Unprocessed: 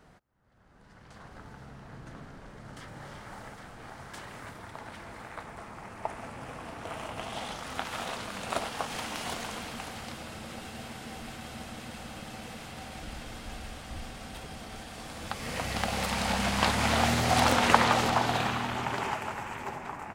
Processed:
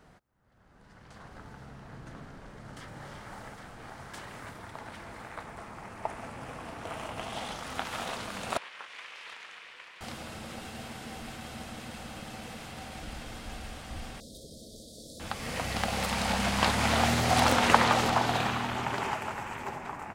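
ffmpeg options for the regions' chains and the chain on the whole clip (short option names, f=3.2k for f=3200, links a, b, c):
-filter_complex "[0:a]asettb=1/sr,asplit=3[a][b][c];[a]atrim=end=8.574[d];[b]atrim=start=8.57:end=10.01,asetpts=PTS-STARTPTS,afade=t=in:d=0.004:c=qsin,afade=t=out:st=1.436:d=0.004:c=qsin,aeval=exprs='val(0)*sin(2*PI*260*n/s)':c=same,aeval=exprs='val(0)+0.00224*(sin(2*PI*60*n/s)+sin(2*PI*2*60*n/s)/2+sin(2*PI*3*60*n/s)/3+sin(2*PI*4*60*n/s)/4+sin(2*PI*5*60*n/s)/5)':c=same,bandpass=f=2.2k:t=q:w=1.6[e];[c]atrim=start=10.006[f];[d][e]acrossfade=d=0.004:c1=hsin:c2=qsin[g];[g][f]acrossfade=d=0.004:c1=qsin:c2=hsin,asettb=1/sr,asplit=3[h][i][j];[h]atrim=end=14.204[k];[i]atrim=start=14.2:end=15.2,asetpts=PTS-STARTPTS,afade=t=in:d=0.004:c=qsin,afade=t=out:st=0.996:d=0.004:c=qsin,asuperstop=centerf=1500:order=20:qfactor=0.51,lowshelf=f=210:g=-8.5[l];[j]atrim=start=15.196[m];[k][l]acrossfade=d=0.004:c1=hsin:c2=qsin[n];[n][m]acrossfade=d=0.004:c1=qsin:c2=hsin"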